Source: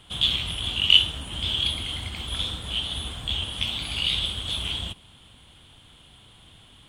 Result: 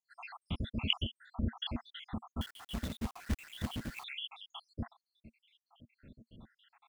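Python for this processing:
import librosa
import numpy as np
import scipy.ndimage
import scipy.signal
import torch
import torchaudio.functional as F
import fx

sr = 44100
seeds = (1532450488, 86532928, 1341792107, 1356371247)

y = fx.spec_dropout(x, sr, seeds[0], share_pct=83)
y = scipy.signal.sosfilt(scipy.signal.butter(2, 1700.0, 'lowpass', fs=sr, output='sos'), y)
y = fx.peak_eq(y, sr, hz=230.0, db=12.0, octaves=0.48)
y = fx.quant_companded(y, sr, bits=4, at=(2.41, 4.04))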